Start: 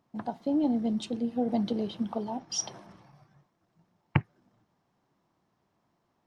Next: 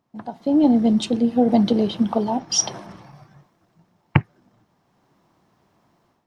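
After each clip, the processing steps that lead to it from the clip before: AGC gain up to 12 dB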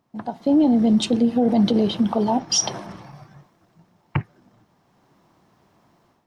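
limiter -13.5 dBFS, peak gain reduction 11 dB; gain +3 dB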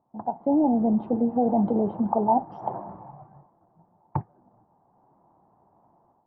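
ladder low-pass 960 Hz, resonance 60%; gain +4.5 dB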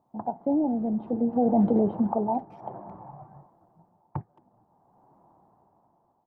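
dynamic EQ 930 Hz, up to -5 dB, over -37 dBFS, Q 1.8; speakerphone echo 0.22 s, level -23 dB; tremolo 0.58 Hz, depth 57%; gain +2 dB

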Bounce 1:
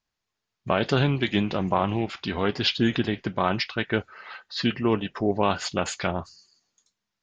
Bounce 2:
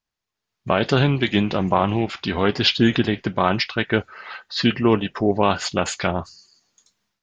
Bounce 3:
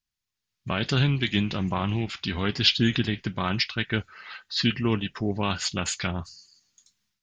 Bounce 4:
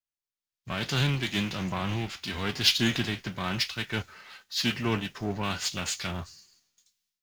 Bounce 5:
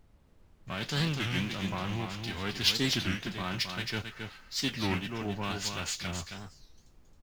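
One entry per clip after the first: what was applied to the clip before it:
AGC gain up to 14 dB; gain -2.5 dB
bell 610 Hz -13.5 dB 2.5 oct
spectral whitening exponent 0.6; power-law curve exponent 0.7; three-band expander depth 70%; gain -8.5 dB
added noise brown -54 dBFS; echo 0.27 s -6 dB; record warp 33 1/3 rpm, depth 250 cents; gain -4 dB

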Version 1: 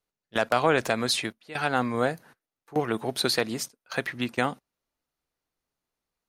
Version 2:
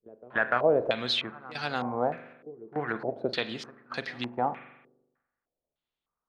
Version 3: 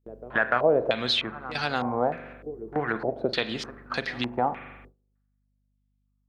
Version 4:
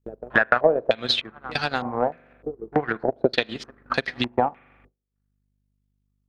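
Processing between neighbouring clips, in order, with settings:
pre-echo 0.295 s -18.5 dB; spring tank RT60 1 s, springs 41 ms, chirp 20 ms, DRR 11.5 dB; stepped low-pass 3.3 Hz 420–4800 Hz; gain -7 dB
hum 50 Hz, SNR 27 dB; gate with hold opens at -46 dBFS; in parallel at +2.5 dB: compressor, threshold -35 dBFS, peak gain reduction 15.5 dB
transient shaper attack +9 dB, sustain -12 dB; gain -1 dB

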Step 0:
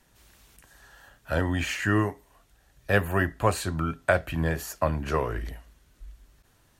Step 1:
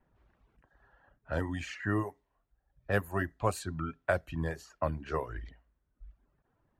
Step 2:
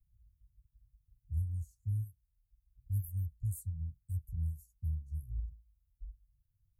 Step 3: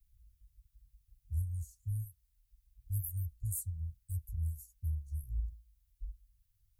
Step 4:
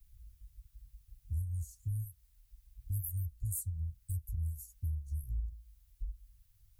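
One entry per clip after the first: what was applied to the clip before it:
low-pass opened by the level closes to 1200 Hz, open at -20.5 dBFS; reverb removal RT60 1 s; dynamic EQ 2800 Hz, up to -5 dB, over -44 dBFS, Q 1.2; gain -6 dB
inverse Chebyshev band-stop 510–2600 Hz, stop band 80 dB; gain +4.5 dB
passive tone stack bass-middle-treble 10-0-10; gain +9.5 dB
compressor 2.5:1, threshold -45 dBFS, peak gain reduction 10.5 dB; gain +8 dB

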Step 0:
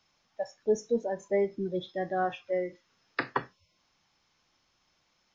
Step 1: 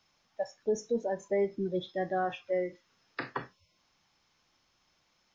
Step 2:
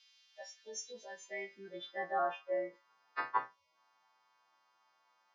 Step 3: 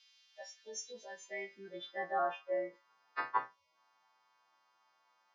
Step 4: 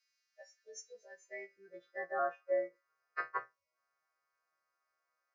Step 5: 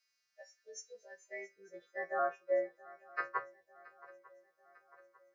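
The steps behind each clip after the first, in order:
limiter -21 dBFS, peak gain reduction 7 dB
frequency quantiser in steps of 2 st; band-pass sweep 3300 Hz -> 970 Hz, 1.21–2.25; gain +5.5 dB
nothing audible
fixed phaser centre 900 Hz, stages 6; upward expander 1.5:1, over -54 dBFS; gain +3.5 dB
swung echo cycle 0.898 s, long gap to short 3:1, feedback 50%, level -21 dB; gain +1 dB

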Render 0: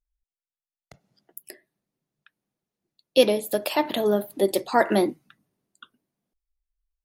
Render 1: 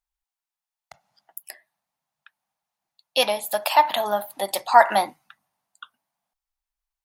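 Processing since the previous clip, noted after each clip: resonant low shelf 560 Hz -13 dB, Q 3; gain +3.5 dB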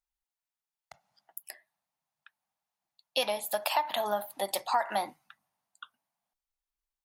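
compressor 10:1, threshold -19 dBFS, peak gain reduction 12 dB; gain -5 dB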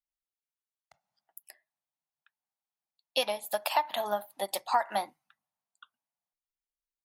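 upward expander 1.5:1, over -48 dBFS; gain +2 dB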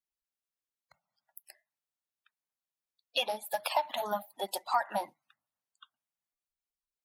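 bin magnitudes rounded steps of 30 dB; gain -1.5 dB

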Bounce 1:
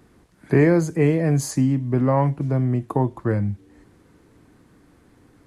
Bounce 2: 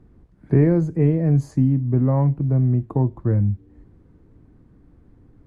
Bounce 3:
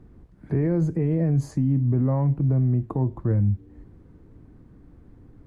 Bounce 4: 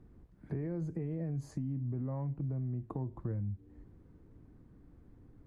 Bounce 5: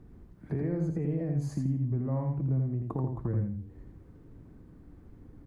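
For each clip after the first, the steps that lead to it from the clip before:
tilt -4 dB/oct; gain -8 dB
limiter -17 dBFS, peak gain reduction 11 dB; gain +2 dB
compressor, threshold -25 dBFS, peak gain reduction 7.5 dB; gain -8.5 dB
feedback echo 83 ms, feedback 24%, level -4 dB; gain +5 dB

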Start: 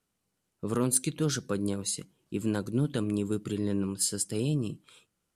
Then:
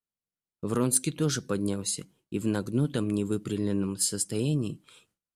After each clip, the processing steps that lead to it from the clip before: gate with hold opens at -58 dBFS; gain +1.5 dB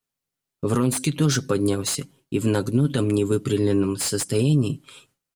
comb 7.4 ms, depth 56%; limiter -18.5 dBFS, peak gain reduction 9 dB; slew limiter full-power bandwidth 210 Hz; gain +8 dB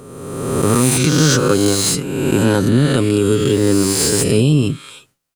spectral swells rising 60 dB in 1.57 s; gain +5 dB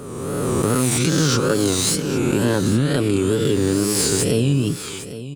compressor 2:1, threshold -24 dBFS, peak gain reduction 8.5 dB; wow and flutter 120 cents; echo 0.808 s -13.5 dB; gain +3 dB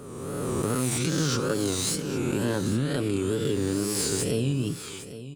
reverb, pre-delay 18 ms, DRR 16.5 dB; gain -8 dB

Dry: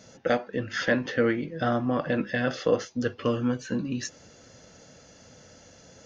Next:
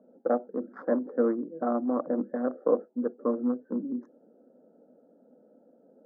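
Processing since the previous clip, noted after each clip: Wiener smoothing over 41 samples; elliptic band-pass 230–1200 Hz, stop band 40 dB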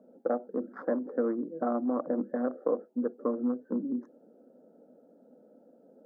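compressor 3:1, threshold -27 dBFS, peak gain reduction 7 dB; gain +1 dB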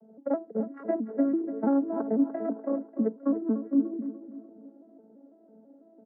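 arpeggiated vocoder major triad, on A3, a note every 0.166 s; feedback echo 0.294 s, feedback 40%, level -12 dB; gain +4 dB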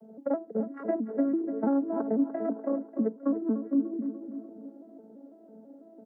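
compressor 1.5:1, threshold -38 dBFS, peak gain reduction 7.5 dB; gain +4.5 dB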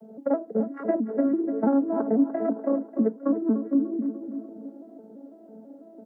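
flange 1.2 Hz, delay 1.2 ms, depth 4.6 ms, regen -84%; gain +9 dB

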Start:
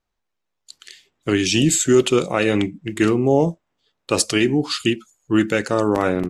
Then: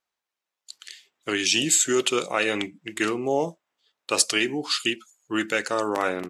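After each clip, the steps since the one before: HPF 930 Hz 6 dB/oct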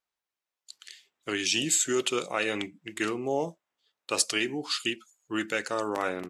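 low shelf 77 Hz +5.5 dB; gain -5 dB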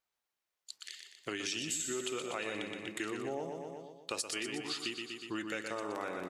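feedback echo 0.121 s, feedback 51%, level -6.5 dB; compressor 3:1, threshold -38 dBFS, peak gain reduction 14 dB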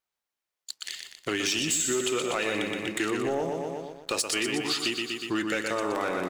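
sample leveller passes 2; gain +3.5 dB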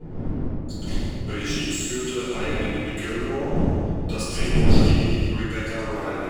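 wind noise 220 Hz -26 dBFS; reverb RT60 1.9 s, pre-delay 4 ms, DRR -16 dB; gain -16.5 dB

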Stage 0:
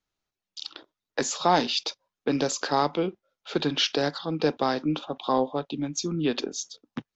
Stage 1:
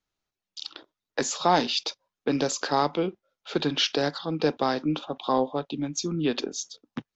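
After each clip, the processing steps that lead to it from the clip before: nothing audible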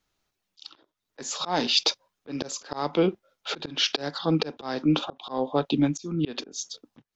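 auto swell 0.413 s; gain +8 dB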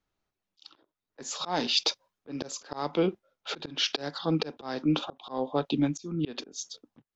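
mismatched tape noise reduction decoder only; gain -3.5 dB

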